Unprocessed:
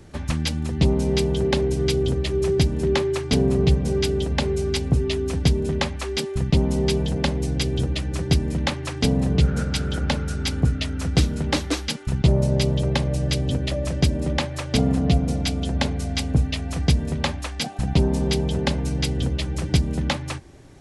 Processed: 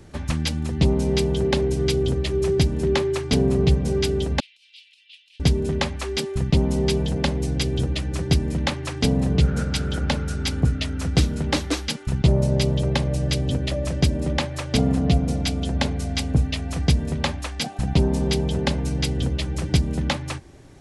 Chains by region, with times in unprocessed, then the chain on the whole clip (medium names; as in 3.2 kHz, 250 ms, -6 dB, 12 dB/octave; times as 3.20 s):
4.40–5.40 s: steep high-pass 2.7 kHz 48 dB/octave + transient shaper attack -9 dB, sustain +11 dB + distance through air 420 m
whole clip: none